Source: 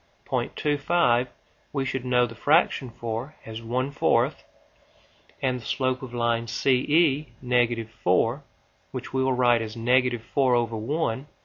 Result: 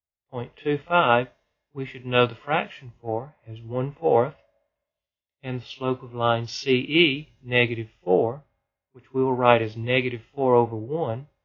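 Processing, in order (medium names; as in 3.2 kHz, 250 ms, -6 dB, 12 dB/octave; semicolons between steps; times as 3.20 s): harmonic-percussive split percussive -12 dB; pre-echo 36 ms -19 dB; three bands expanded up and down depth 100%; trim +2.5 dB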